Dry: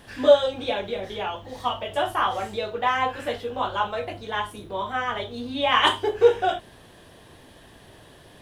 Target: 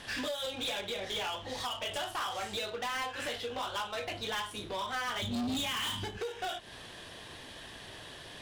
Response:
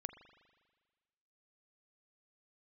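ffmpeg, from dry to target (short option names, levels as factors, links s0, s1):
-filter_complex "[0:a]adynamicsmooth=sensitivity=7:basefreq=3900,alimiter=limit=0.2:level=0:latency=1:release=204,acompressor=threshold=0.0224:ratio=8,asettb=1/sr,asplit=3[s0][s1][s2];[s0]atrim=end=5.224[s3];[s1]atrim=start=5.22:end=6.18,asetpts=PTS-STARTPTS,afade=t=in:d=0.004:c=qsin,afade=t=out:st=0.956:d=0.004:c=qsin,lowshelf=f=290:t=q:w=3:g=12.5[s4];[s2]atrim=start=6.176[s5];[s3][s4]acrossfade=d=0.004:c1=hsin:c2=qsin[s6];[s6][s5]acrossfade=d=0.004:c1=qsin:c2=hsin,crystalizer=i=10:c=0,asoftclip=type=hard:threshold=0.0376,volume=0.708"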